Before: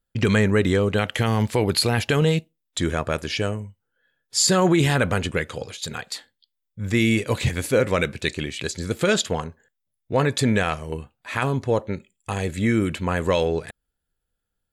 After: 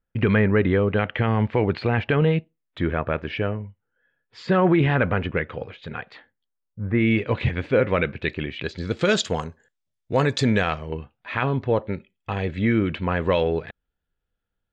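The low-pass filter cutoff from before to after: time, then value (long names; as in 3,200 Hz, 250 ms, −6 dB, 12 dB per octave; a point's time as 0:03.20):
low-pass filter 24 dB per octave
0:06.15 2,600 Hz
0:06.81 1,200 Hz
0:07.11 3,000 Hz
0:08.52 3,000 Hz
0:09.35 7,900 Hz
0:10.18 7,900 Hz
0:10.96 3,500 Hz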